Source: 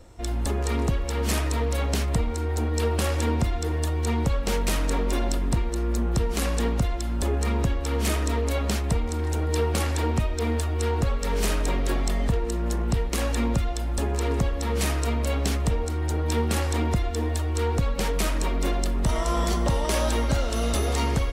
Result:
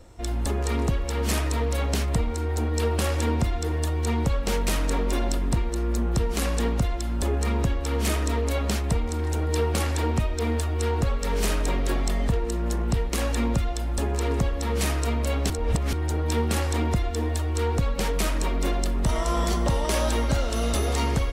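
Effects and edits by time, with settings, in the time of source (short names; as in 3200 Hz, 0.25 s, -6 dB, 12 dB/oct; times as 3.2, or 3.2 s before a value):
15.5–15.93 reverse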